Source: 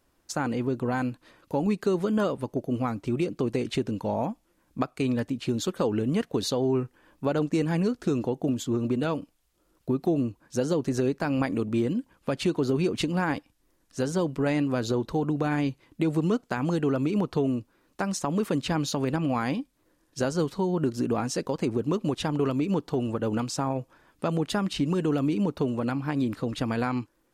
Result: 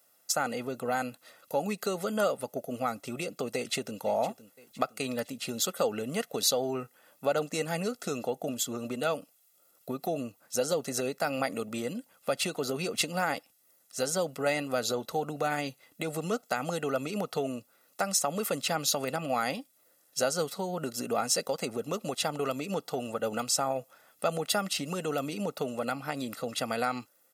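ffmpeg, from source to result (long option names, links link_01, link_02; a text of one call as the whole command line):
ffmpeg -i in.wav -filter_complex "[0:a]asplit=2[link_01][link_02];[link_02]afade=type=in:start_time=3.55:duration=0.01,afade=type=out:start_time=4:duration=0.01,aecho=0:1:510|1020|1530|2040:0.16788|0.0755462|0.0339958|0.0152981[link_03];[link_01][link_03]amix=inputs=2:normalize=0,highpass=290,aemphasis=mode=production:type=50fm,aecho=1:1:1.5:0.69,volume=-1.5dB" out.wav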